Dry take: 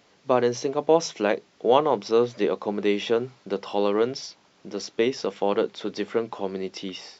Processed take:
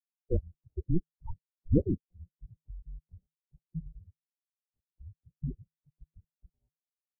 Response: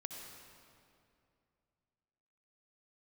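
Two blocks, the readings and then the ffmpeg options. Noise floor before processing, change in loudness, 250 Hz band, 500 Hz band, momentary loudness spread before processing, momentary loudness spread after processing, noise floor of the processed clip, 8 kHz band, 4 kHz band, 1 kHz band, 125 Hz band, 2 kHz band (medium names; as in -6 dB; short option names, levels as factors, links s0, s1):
-61 dBFS, -9.0 dB, -8.5 dB, -20.5 dB, 11 LU, 24 LU, under -85 dBFS, no reading, under -40 dB, under -35 dB, +4.0 dB, under -40 dB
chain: -filter_complex "[0:a]afftfilt=real='re*gte(hypot(re,im),0.282)':imag='im*gte(hypot(re,im),0.282)':win_size=1024:overlap=0.75,afreqshift=-410,acrossover=split=220|660|1300[s0][s1][s2][s3];[s3]acrusher=bits=6:mix=0:aa=0.000001[s4];[s0][s1][s2][s4]amix=inputs=4:normalize=0,highpass=f=240:t=q:w=0.5412,highpass=f=240:t=q:w=1.307,lowpass=f=3300:t=q:w=0.5176,lowpass=f=3300:t=q:w=0.7071,lowpass=f=3300:t=q:w=1.932,afreqshift=-250" -ar 22050 -c:a libmp3lame -b:a 8k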